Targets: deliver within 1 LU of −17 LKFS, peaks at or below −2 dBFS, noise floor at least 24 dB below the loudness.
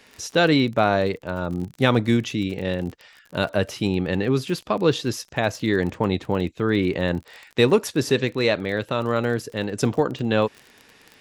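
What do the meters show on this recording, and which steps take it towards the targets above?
crackle rate 32 per second; integrated loudness −23.0 LKFS; sample peak −3.5 dBFS; target loudness −17.0 LKFS
→ click removal
level +6 dB
brickwall limiter −2 dBFS

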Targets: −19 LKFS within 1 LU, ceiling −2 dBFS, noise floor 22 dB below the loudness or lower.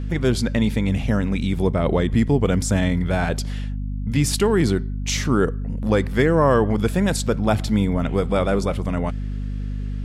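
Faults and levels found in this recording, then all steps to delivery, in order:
mains hum 50 Hz; hum harmonics up to 250 Hz; level of the hum −24 dBFS; integrated loudness −21.5 LKFS; sample peak −5.5 dBFS; target loudness −19.0 LKFS
→ hum removal 50 Hz, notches 5
level +2.5 dB

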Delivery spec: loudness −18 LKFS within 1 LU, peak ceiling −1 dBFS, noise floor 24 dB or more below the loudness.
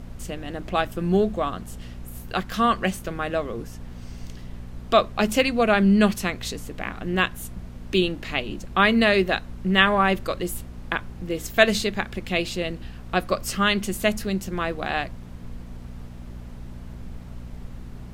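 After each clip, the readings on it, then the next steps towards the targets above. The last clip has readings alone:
mains hum 60 Hz; hum harmonics up to 240 Hz; level of the hum −37 dBFS; background noise floor −39 dBFS; target noise floor −48 dBFS; integrated loudness −23.5 LKFS; sample peak −1.5 dBFS; target loudness −18.0 LKFS
→ hum removal 60 Hz, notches 4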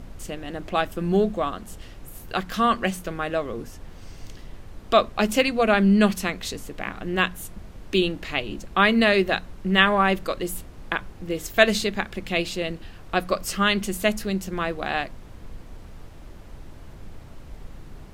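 mains hum none found; background noise floor −43 dBFS; target noise floor −48 dBFS
→ noise reduction from a noise print 6 dB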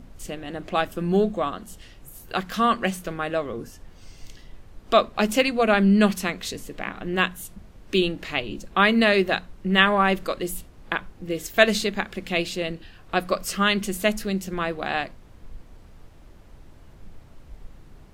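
background noise floor −48 dBFS; integrated loudness −23.5 LKFS; sample peak −1.5 dBFS; target loudness −18.0 LKFS
→ level +5.5 dB
brickwall limiter −1 dBFS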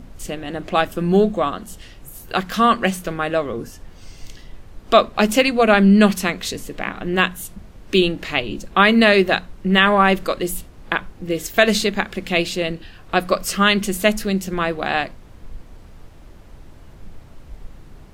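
integrated loudness −18.5 LKFS; sample peak −1.0 dBFS; background noise floor −43 dBFS

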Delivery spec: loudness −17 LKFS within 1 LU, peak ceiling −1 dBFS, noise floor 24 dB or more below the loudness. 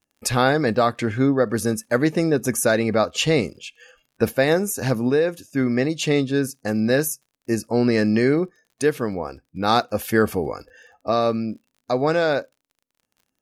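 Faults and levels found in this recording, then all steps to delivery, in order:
crackle rate 43 per second; integrated loudness −21.5 LKFS; sample peak −3.5 dBFS; target loudness −17.0 LKFS
→ click removal
level +4.5 dB
brickwall limiter −1 dBFS

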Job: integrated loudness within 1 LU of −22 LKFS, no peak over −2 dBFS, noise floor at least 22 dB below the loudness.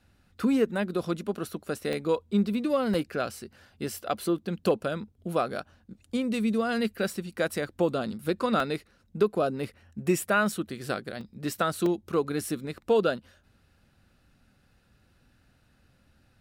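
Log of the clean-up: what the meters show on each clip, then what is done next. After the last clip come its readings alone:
number of dropouts 7; longest dropout 2.4 ms; integrated loudness −29.0 LKFS; sample peak −12.5 dBFS; target loudness −22.0 LKFS
→ repair the gap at 0:01.93/0:02.94/0:08.60/0:10.52/0:11.21/0:11.86/0:12.89, 2.4 ms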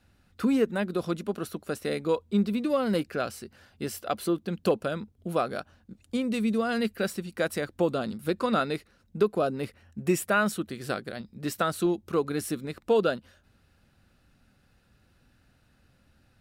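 number of dropouts 0; integrated loudness −29.0 LKFS; sample peak −12.5 dBFS; target loudness −22.0 LKFS
→ level +7 dB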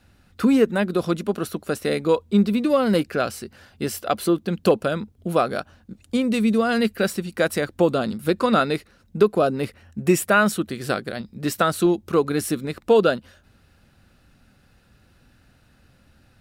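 integrated loudness −22.0 LKFS; sample peak −5.5 dBFS; background noise floor −58 dBFS

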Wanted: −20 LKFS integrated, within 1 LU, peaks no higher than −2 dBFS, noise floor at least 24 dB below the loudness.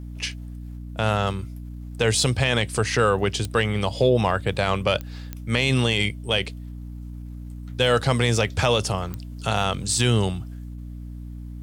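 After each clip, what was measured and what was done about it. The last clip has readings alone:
number of clicks 4; mains hum 60 Hz; hum harmonics up to 300 Hz; level of the hum −34 dBFS; integrated loudness −23.0 LKFS; sample peak −5.5 dBFS; target loudness −20.0 LKFS
→ click removal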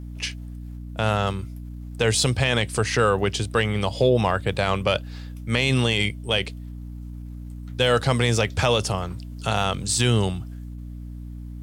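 number of clicks 0; mains hum 60 Hz; hum harmonics up to 300 Hz; level of the hum −34 dBFS
→ hum removal 60 Hz, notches 5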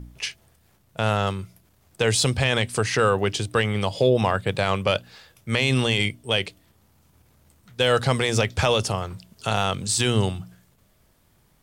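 mains hum none found; integrated loudness −23.0 LKFS; sample peak −6.0 dBFS; target loudness −20.0 LKFS
→ level +3 dB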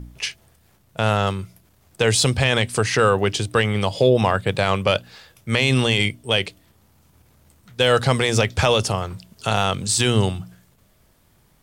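integrated loudness −20.0 LKFS; sample peak −3.0 dBFS; background noise floor −59 dBFS

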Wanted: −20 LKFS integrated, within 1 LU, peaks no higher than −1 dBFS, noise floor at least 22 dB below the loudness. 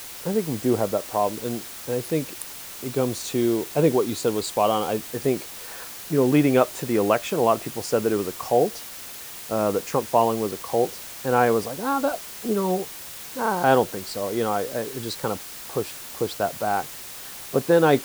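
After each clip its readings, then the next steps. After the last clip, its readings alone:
background noise floor −38 dBFS; target noise floor −46 dBFS; integrated loudness −24.0 LKFS; sample peak −4.0 dBFS; target loudness −20.0 LKFS
→ broadband denoise 8 dB, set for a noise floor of −38 dBFS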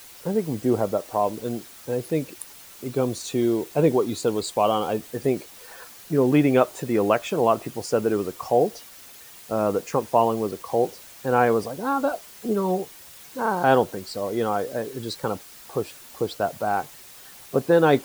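background noise floor −46 dBFS; target noise floor −47 dBFS
→ broadband denoise 6 dB, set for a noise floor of −46 dBFS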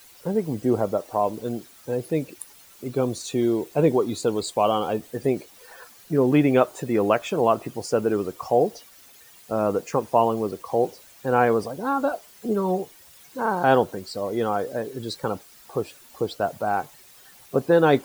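background noise floor −51 dBFS; integrated loudness −24.5 LKFS; sample peak −4.5 dBFS; target loudness −20.0 LKFS
→ level +4.5 dB
brickwall limiter −1 dBFS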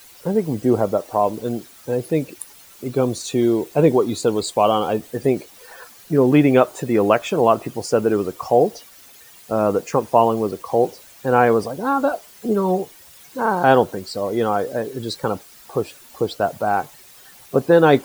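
integrated loudness −20.0 LKFS; sample peak −1.0 dBFS; background noise floor −46 dBFS

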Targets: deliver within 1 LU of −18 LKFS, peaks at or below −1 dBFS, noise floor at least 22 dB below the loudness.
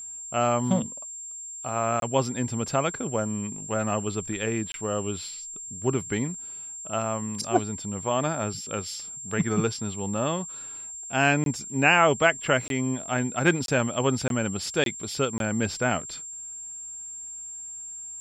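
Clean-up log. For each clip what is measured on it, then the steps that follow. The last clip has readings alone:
number of dropouts 8; longest dropout 22 ms; interfering tone 7,400 Hz; level of the tone −36 dBFS; integrated loudness −27.0 LKFS; sample peak −5.5 dBFS; target loudness −18.0 LKFS
→ repair the gap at 0:02.00/0:04.72/0:11.44/0:12.68/0:13.66/0:14.28/0:14.84/0:15.38, 22 ms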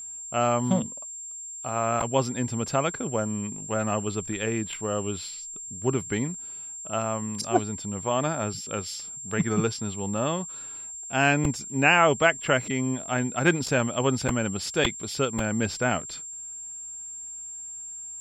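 number of dropouts 0; interfering tone 7,400 Hz; level of the tone −36 dBFS
→ notch filter 7,400 Hz, Q 30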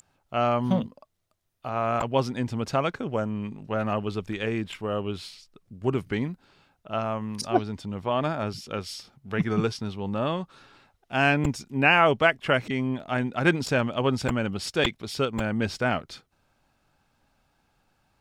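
interfering tone none found; integrated loudness −27.0 LKFS; sample peak −5.5 dBFS; target loudness −18.0 LKFS
→ level +9 dB
brickwall limiter −1 dBFS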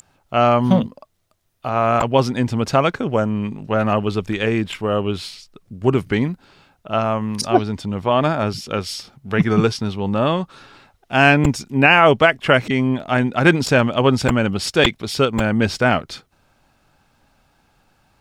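integrated loudness −18.5 LKFS; sample peak −1.0 dBFS; background noise floor −62 dBFS

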